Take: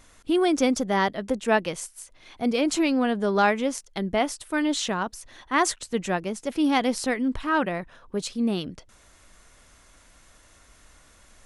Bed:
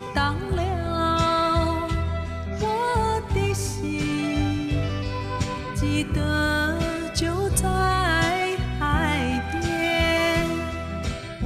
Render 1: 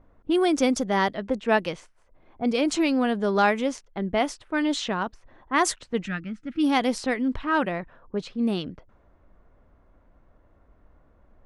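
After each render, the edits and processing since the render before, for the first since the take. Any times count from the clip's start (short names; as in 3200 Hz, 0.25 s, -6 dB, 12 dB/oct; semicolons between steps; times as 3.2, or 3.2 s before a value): 6.05–6.64 spectral gain 340–1200 Hz -17 dB; low-pass opened by the level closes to 710 Hz, open at -18.5 dBFS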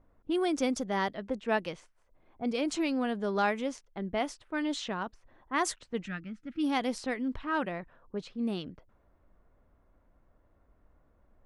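gain -7.5 dB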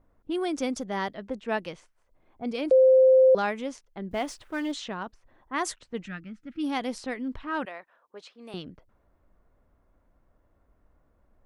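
2.71–3.35 bleep 521 Hz -13.5 dBFS; 4.11–4.72 G.711 law mismatch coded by mu; 7.65–8.54 HPF 620 Hz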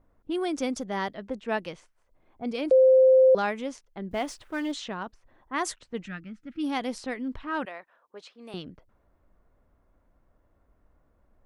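nothing audible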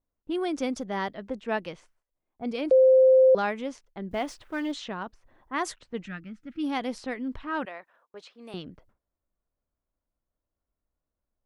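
gate with hold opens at -52 dBFS; dynamic EQ 8700 Hz, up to -5 dB, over -56 dBFS, Q 0.78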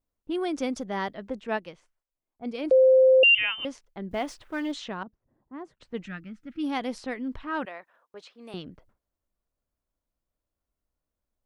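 1.47–2.64 upward expander, over -39 dBFS; 3.23–3.65 inverted band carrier 3300 Hz; 5.03–5.8 band-pass 170 Hz, Q 1.1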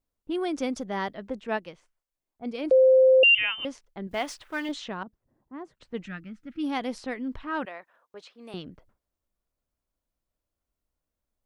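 4.07–4.69 tilt shelf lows -5 dB, about 680 Hz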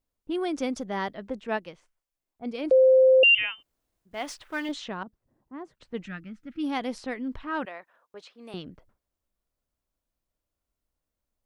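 3.51–4.17 room tone, crossfade 0.24 s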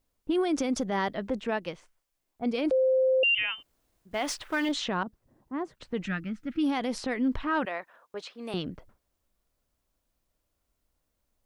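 in parallel at +1.5 dB: compressor, threshold -28 dBFS, peak gain reduction 11.5 dB; on the sum: limiter -20 dBFS, peak gain reduction 10.5 dB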